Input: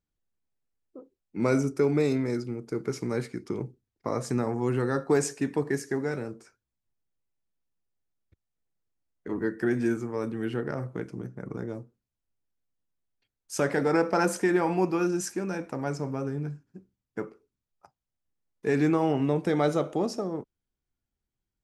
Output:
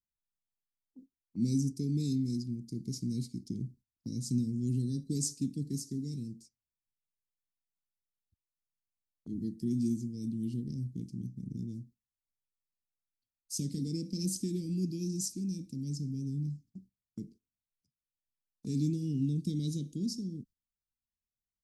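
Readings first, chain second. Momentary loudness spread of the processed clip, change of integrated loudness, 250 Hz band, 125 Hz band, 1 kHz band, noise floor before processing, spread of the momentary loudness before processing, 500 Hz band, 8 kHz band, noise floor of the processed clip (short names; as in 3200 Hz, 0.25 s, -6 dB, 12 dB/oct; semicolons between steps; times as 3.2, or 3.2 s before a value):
14 LU, -6.5 dB, -5.0 dB, -1.0 dB, under -40 dB, under -85 dBFS, 14 LU, -20.5 dB, -1.0 dB, under -85 dBFS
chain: elliptic band-stop 240–4400 Hz, stop band 60 dB; gate -55 dBFS, range -13 dB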